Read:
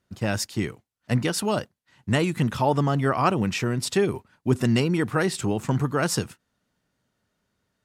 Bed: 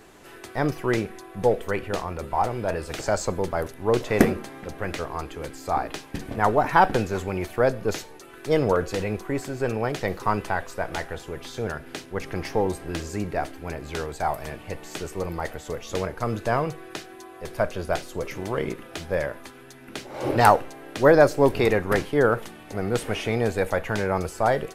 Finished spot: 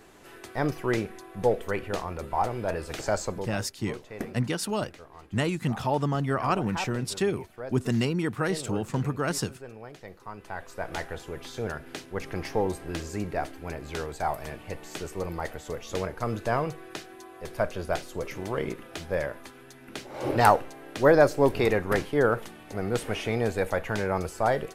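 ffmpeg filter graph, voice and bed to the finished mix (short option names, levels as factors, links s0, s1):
-filter_complex "[0:a]adelay=3250,volume=0.596[s0];[1:a]volume=3.76,afade=t=out:st=3.15:d=0.49:silence=0.188365,afade=t=in:st=10.37:d=0.63:silence=0.188365[s1];[s0][s1]amix=inputs=2:normalize=0"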